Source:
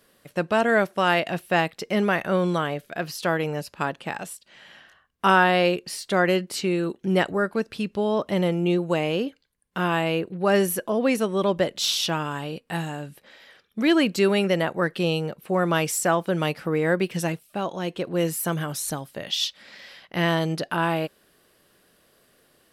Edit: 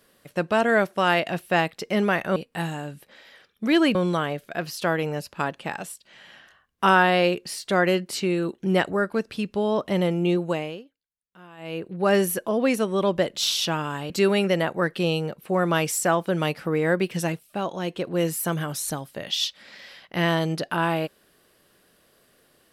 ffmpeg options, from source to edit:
ffmpeg -i in.wav -filter_complex "[0:a]asplit=6[link_01][link_02][link_03][link_04][link_05][link_06];[link_01]atrim=end=2.362[link_07];[link_02]atrim=start=12.508:end=14.102[link_08];[link_03]atrim=start=2.358:end=9.25,asetpts=PTS-STARTPTS,afade=type=out:start_time=6.472:duration=0.42:silence=0.0668344[link_09];[link_04]atrim=start=9.25:end=9.98,asetpts=PTS-STARTPTS,volume=-23.5dB[link_10];[link_05]atrim=start=9.98:end=12.512,asetpts=PTS-STARTPTS,afade=type=in:duration=0.42:silence=0.0668344[link_11];[link_06]atrim=start=14.098[link_12];[link_07][link_08]acrossfade=duration=0.004:curve1=hsin:curve2=hsin[link_13];[link_09][link_10][link_11]concat=n=3:v=0:a=1[link_14];[link_13][link_14]acrossfade=duration=0.004:curve1=hsin:curve2=hsin[link_15];[link_15][link_12]acrossfade=duration=0.004:curve1=hsin:curve2=hsin" out.wav

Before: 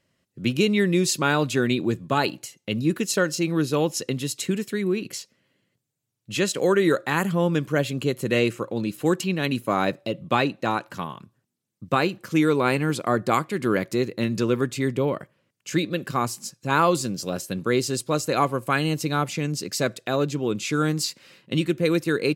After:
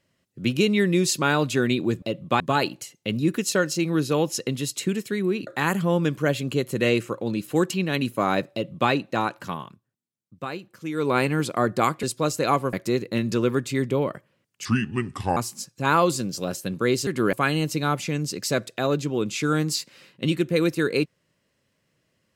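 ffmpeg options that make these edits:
ffmpeg -i in.wav -filter_complex "[0:a]asplit=12[link_01][link_02][link_03][link_04][link_05][link_06][link_07][link_08][link_09][link_10][link_11][link_12];[link_01]atrim=end=2.022[link_13];[link_02]atrim=start=10.018:end=10.402[link_14];[link_03]atrim=start=2.018:end=5.092[link_15];[link_04]atrim=start=6.968:end=11.31,asetpts=PTS-STARTPTS,afade=type=out:start_time=4.162:duration=0.18:silence=0.281838[link_16];[link_05]atrim=start=11.31:end=12.43,asetpts=PTS-STARTPTS,volume=-11dB[link_17];[link_06]atrim=start=12.43:end=13.532,asetpts=PTS-STARTPTS,afade=type=in:duration=0.18:silence=0.281838[link_18];[link_07]atrim=start=17.918:end=18.622[link_19];[link_08]atrim=start=13.788:end=15.714[link_20];[link_09]atrim=start=15.71:end=16.22,asetpts=PTS-STARTPTS,asetrate=31311,aresample=44100,atrim=end_sample=31677,asetpts=PTS-STARTPTS[link_21];[link_10]atrim=start=16.216:end=17.922[link_22];[link_11]atrim=start=13.528:end=13.792[link_23];[link_12]atrim=start=18.618[link_24];[link_13][link_14]acrossfade=duration=0.004:curve1=hsin:curve2=hsin[link_25];[link_25][link_15]acrossfade=duration=0.004:curve1=hsin:curve2=hsin[link_26];[link_16][link_17][link_18]concat=n=3:v=0:a=1[link_27];[link_26][link_27]acrossfade=duration=0.004:curve1=hsin:curve2=hsin[link_28];[link_28][link_19]acrossfade=duration=0.004:curve1=hsin:curve2=hsin[link_29];[link_29][link_20]acrossfade=duration=0.004:curve1=hsin:curve2=hsin[link_30];[link_30][link_21]acrossfade=duration=0.004:curve1=hsin:curve2=hsin[link_31];[link_31][link_22]acrossfade=duration=0.004:curve1=hsin:curve2=hsin[link_32];[link_32][link_23]acrossfade=duration=0.004:curve1=hsin:curve2=hsin[link_33];[link_33][link_24]acrossfade=duration=0.004:curve1=hsin:curve2=hsin" out.wav

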